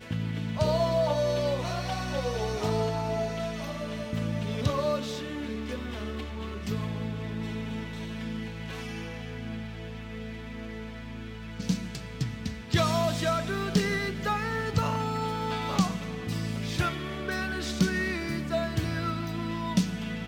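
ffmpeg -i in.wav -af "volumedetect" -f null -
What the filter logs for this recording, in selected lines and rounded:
mean_volume: -30.4 dB
max_volume: -10.4 dB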